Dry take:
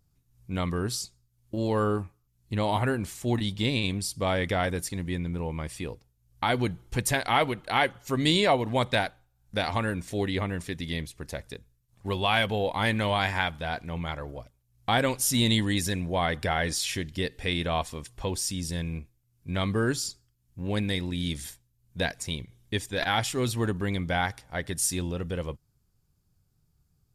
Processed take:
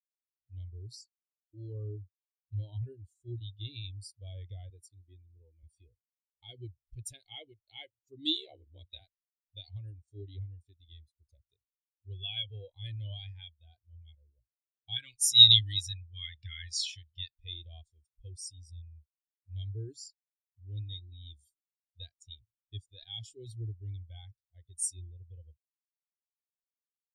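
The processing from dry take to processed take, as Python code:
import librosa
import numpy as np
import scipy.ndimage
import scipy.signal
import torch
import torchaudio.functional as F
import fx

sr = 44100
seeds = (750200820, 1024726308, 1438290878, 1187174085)

y = fx.highpass(x, sr, hz=99.0, slope=12, at=(4.7, 5.63))
y = fx.ring_mod(y, sr, carrier_hz=35.0, at=(8.34, 9.0), fade=0.02)
y = fx.curve_eq(y, sr, hz=(150.0, 750.0, 1200.0, 13000.0), db=(0, -13, 9, 1), at=(14.96, 17.4))
y = fx.curve_eq(y, sr, hz=(110.0, 180.0, 310.0, 1300.0, 2900.0, 4500.0), db=(0, -24, -4, -16, 3, 6))
y = fx.spectral_expand(y, sr, expansion=2.5)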